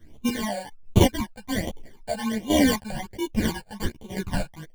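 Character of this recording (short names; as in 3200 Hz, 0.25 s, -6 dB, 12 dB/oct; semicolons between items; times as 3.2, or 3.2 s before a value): aliases and images of a low sample rate 1300 Hz, jitter 0%; phasing stages 12, 1.3 Hz, lowest notch 330–1700 Hz; chopped level 1.2 Hz, depth 65%, duty 35%; a shimmering, thickened sound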